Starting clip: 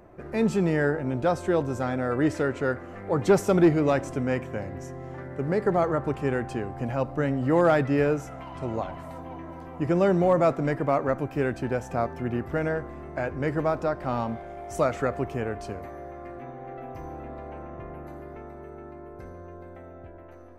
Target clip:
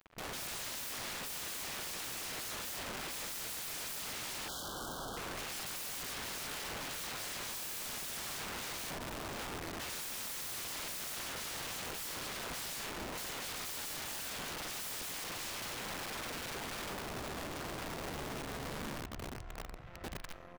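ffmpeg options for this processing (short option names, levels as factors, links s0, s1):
-filter_complex "[0:a]equalizer=f=370:w=0.86:g=-9,asplit=2[s0][s1];[s1]aecho=0:1:40|90|152.5|230.6|328.3:0.631|0.398|0.251|0.158|0.1[s2];[s0][s2]amix=inputs=2:normalize=0,acrusher=bits=6:mix=0:aa=0.5,acompressor=mode=upward:threshold=0.0282:ratio=2.5,asettb=1/sr,asplit=3[s3][s4][s5];[s3]atrim=end=19.004[s6];[s4]atrim=start=19:end=19.87,asetpts=PTS-STARTPTS,afade=t=in:d=0.004:c=qsin,afade=t=out:st=0.866:d=0.004:c=qsin,aeval=exprs='val(0)*sin(2*PI*32*n/s)':c=same[s7];[s5]atrim=start=19.866[s8];[s6][s7]acrossfade=d=0.004:c1=hsin:c2=qsin[s9];[s9][s8]acrossfade=d=0.004:c1=qsin:c2=hsin,afwtdn=0.0355,asplit=2[s10][s11];[s11]aecho=0:1:602:0.178[s12];[s10][s12]amix=inputs=2:normalize=0,aeval=exprs='(mod(141*val(0)+1,2)-1)/141':c=same,asettb=1/sr,asplit=3[s13][s14][s15];[s13]atrim=end=4.484[s16];[s14]atrim=start=4.48:end=5.17,asetpts=PTS-STARTPTS,afade=t=in:d=0.004:c=qsin,afade=t=out:st=0.686:d=0.004:c=qsin,asuperstop=centerf=2200:order=20:qfactor=1.6[s17];[s15]atrim=start=5.166[s18];[s16][s17]acrossfade=d=0.004:c1=hsin:c2=qsin[s19];[s19][s18]acrossfade=d=0.004:c1=qsin:c2=hsin,asoftclip=type=hard:threshold=0.0133,volume=2"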